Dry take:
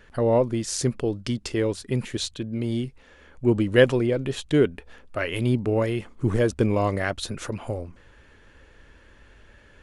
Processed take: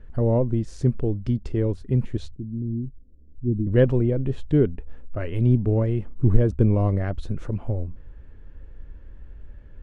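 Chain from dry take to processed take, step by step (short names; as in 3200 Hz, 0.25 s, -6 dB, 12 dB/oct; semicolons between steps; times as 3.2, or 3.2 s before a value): 2.34–3.67 ladder low-pass 380 Hz, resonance 25%; tilt -4.5 dB/oct; gain -7.5 dB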